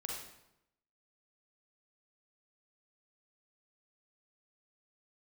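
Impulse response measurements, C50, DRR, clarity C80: 0.5 dB, -2.0 dB, 4.5 dB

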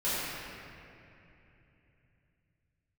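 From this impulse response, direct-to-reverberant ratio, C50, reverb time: -13.5 dB, -5.0 dB, 2.9 s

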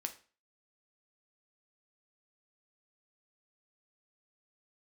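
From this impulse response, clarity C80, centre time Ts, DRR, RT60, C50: 19.0 dB, 7 ms, 5.5 dB, 0.40 s, 14.0 dB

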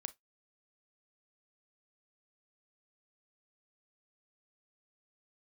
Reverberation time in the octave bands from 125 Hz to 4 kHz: 0.15 s, 0.15 s, 0.15 s, 0.15 s, 0.15 s, 0.15 s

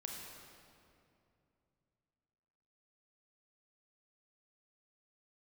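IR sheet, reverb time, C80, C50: 2.6 s, 2.0 dB, 1.0 dB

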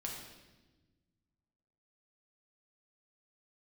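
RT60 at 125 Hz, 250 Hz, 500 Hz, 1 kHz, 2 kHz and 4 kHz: 2.3 s, 2.0 s, 1.4 s, 1.0 s, 1.1 s, 1.1 s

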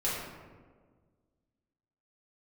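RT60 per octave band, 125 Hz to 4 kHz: 2.0 s, 2.0 s, 1.8 s, 1.4 s, 1.1 s, 0.70 s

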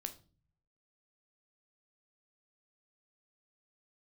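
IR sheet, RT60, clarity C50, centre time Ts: 0.40 s, 14.5 dB, 8 ms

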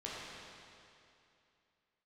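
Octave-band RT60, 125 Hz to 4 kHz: 2.7 s, 2.7 s, 2.7 s, 2.7 s, 2.6 s, 2.5 s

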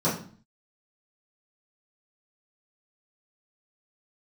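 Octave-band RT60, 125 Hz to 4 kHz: 0.60 s, 0.60 s, 0.45 s, 0.45 s, 0.40 s, 0.40 s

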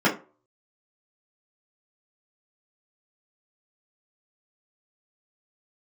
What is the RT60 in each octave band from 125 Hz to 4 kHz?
0.40 s, 0.30 s, 0.40 s, 0.35 s, 0.25 s, 0.20 s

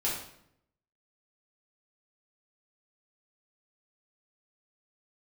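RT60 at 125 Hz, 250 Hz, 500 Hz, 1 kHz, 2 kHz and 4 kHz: 1.0 s, 0.90 s, 0.75 s, 0.65 s, 0.60 s, 0.55 s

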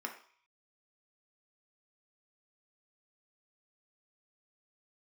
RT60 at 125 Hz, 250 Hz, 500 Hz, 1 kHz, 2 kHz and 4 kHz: 0.55 s, 0.35 s, 0.45 s, 0.55 s, 0.60 s, 0.55 s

